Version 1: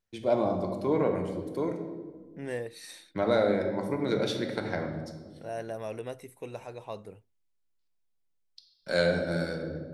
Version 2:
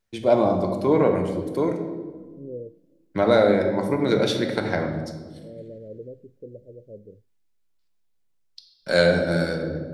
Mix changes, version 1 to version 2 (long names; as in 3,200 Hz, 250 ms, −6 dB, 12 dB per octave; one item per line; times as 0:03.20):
first voice +7.5 dB
second voice: add Butterworth low-pass 570 Hz 96 dB per octave